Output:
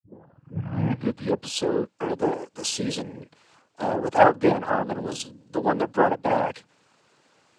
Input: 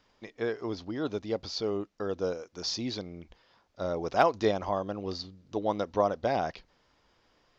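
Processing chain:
turntable start at the beginning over 1.60 s
treble cut that deepens with the level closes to 2,400 Hz, closed at −25 dBFS
cochlear-implant simulation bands 8
level +7 dB

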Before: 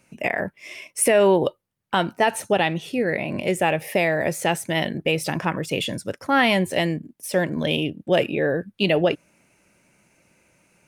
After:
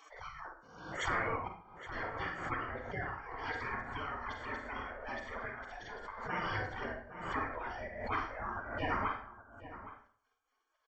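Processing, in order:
hearing-aid frequency compression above 1,200 Hz 1.5 to 1
reverb reduction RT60 1.3 s
low-shelf EQ 270 Hz +8 dB
gate on every frequency bin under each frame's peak −30 dB weak
Savitzky-Golay smoothing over 41 samples
slap from a distant wall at 140 metres, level −13 dB
on a send at −2.5 dB: convolution reverb RT60 0.50 s, pre-delay 33 ms
on the sum: background raised ahead of every attack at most 64 dB per second
level +9.5 dB

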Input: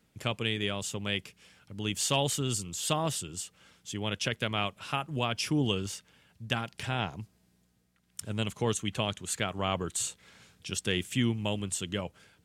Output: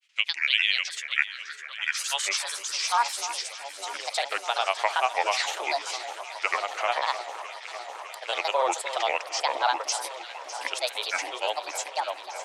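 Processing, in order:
Butterworth high-pass 380 Hz 36 dB per octave
high-shelf EQ 5,600 Hz +11.5 dB
in parallel at 0 dB: brickwall limiter −19 dBFS, peak gain reduction 9.5 dB
on the sum: granular cloud, pitch spread up and down by 7 semitones
high-frequency loss of the air 93 metres
on a send: delay that swaps between a low-pass and a high-pass 302 ms, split 1,600 Hz, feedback 89%, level −12 dB
on the sum: high-pass filter sweep 2,500 Hz → 740 Hz, 0:00.39–0:03.52

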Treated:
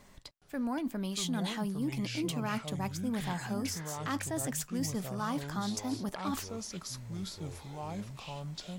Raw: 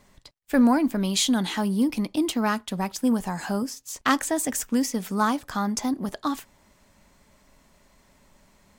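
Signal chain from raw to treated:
reversed playback
downward compressor 6 to 1, threshold −33 dBFS, peak gain reduction 17 dB
reversed playback
delay with pitch and tempo change per echo 417 ms, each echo −6 semitones, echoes 2, each echo −6 dB

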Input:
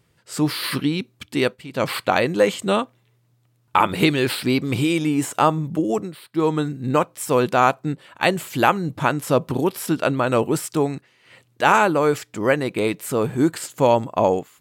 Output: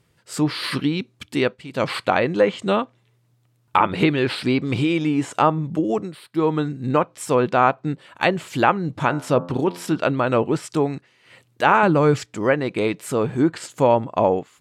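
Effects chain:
treble cut that deepens with the level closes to 2,500 Hz, closed at −13.5 dBFS
0:09.05–0:09.98: hum removal 87.38 Hz, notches 19
0:11.83–0:12.26: bass and treble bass +10 dB, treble +12 dB

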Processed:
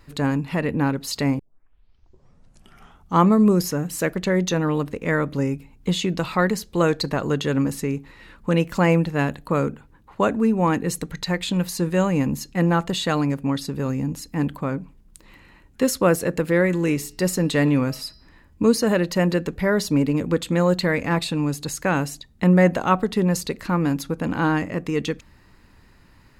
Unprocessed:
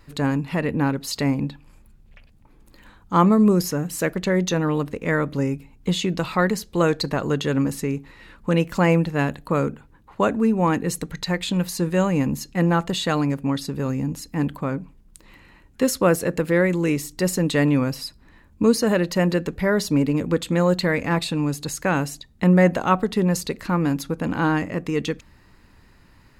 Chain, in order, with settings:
0:01.39: tape start 1.82 s
0:16.57–0:18.65: hum removal 213.4 Hz, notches 28

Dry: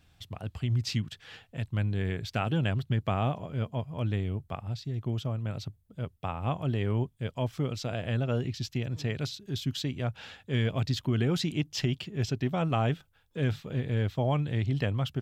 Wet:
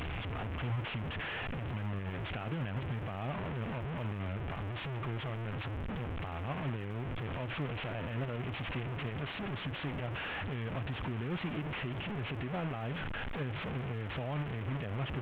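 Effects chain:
linear delta modulator 16 kbit/s, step −26 dBFS
brickwall limiter −23.5 dBFS, peak gain reduction 8.5 dB
surface crackle 200 per second −52 dBFS
level −5.5 dB

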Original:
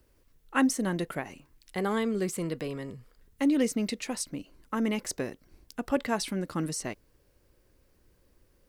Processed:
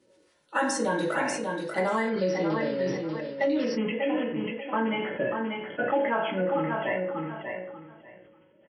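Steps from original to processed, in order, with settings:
spectral magnitudes quantised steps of 30 dB
bass and treble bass −7 dB, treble −3 dB
convolution reverb RT60 0.50 s, pre-delay 3 ms, DRR −5 dB
flanger 0.58 Hz, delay 5.1 ms, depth 1.3 ms, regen +57%
high-pass filter 140 Hz 12 dB per octave
repeating echo 590 ms, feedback 18%, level −7.5 dB
downward compressor 6 to 1, threshold −29 dBFS, peak gain reduction 9.5 dB
linear-phase brick-wall low-pass 11,000 Hz, from 0:02.08 5,900 Hz, from 0:03.76 3,400 Hz
level that may fall only so fast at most 38 dB per second
level +6 dB

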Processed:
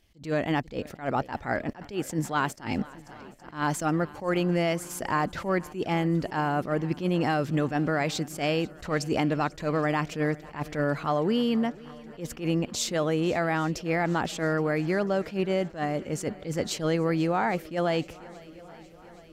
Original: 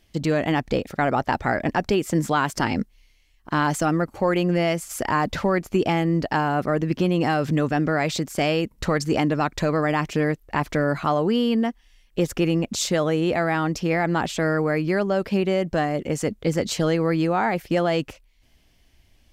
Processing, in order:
feedback echo with a long and a short gap by turns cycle 820 ms, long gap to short 1.5 to 1, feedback 58%, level −22 dB
level that may rise only so fast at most 190 dB per second
level −4 dB

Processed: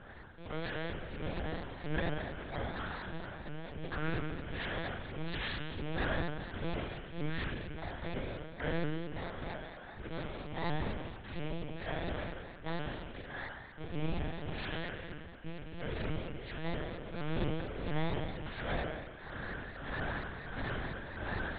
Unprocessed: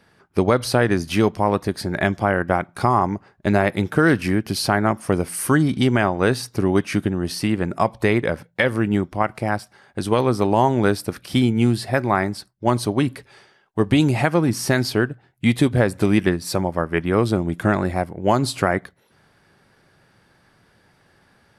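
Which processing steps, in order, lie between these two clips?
samples in bit-reversed order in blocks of 16 samples
parametric band 1,700 Hz +8 dB 0.48 octaves
automatic gain control gain up to 13.5 dB
volume swells 745 ms
downward compressor 3 to 1, threshold −30 dBFS, peak gain reduction 12.5 dB
tube saturation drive 43 dB, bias 0.75
asymmetric clip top −44.5 dBFS
amplitude tremolo 1.5 Hz, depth 79%
flutter between parallel walls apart 7.7 metres, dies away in 1.2 s
spring reverb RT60 1.8 s, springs 39/43/51 ms, DRR 7 dB
one-pitch LPC vocoder at 8 kHz 160 Hz
pitch modulation by a square or saw wave saw up 4.3 Hz, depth 160 cents
level +10 dB

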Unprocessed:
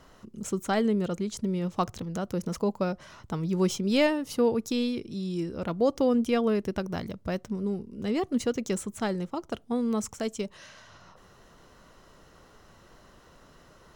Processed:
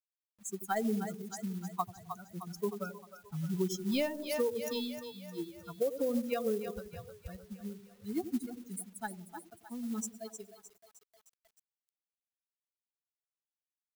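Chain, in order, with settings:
spectral dynamics exaggerated over time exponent 3
dynamic equaliser 520 Hz, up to +5 dB, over −42 dBFS, Q 2.1
gain on a spectral selection 0:08.21–0:08.96, 310–8,600 Hz −16 dB
echo with a time of its own for lows and highs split 550 Hz, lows 86 ms, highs 308 ms, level −11 dB
downward compressor 12 to 1, threshold −28 dBFS, peak gain reduction 11 dB
log-companded quantiser 6 bits
high-shelf EQ 9,900 Hz +11 dB

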